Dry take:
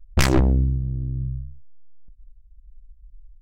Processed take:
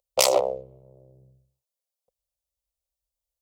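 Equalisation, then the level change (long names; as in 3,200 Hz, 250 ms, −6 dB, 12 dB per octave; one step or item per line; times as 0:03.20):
high-pass with resonance 530 Hz, resonance Q 4.9
high-shelf EQ 2,200 Hz +9 dB
phaser with its sweep stopped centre 680 Hz, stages 4
−1.0 dB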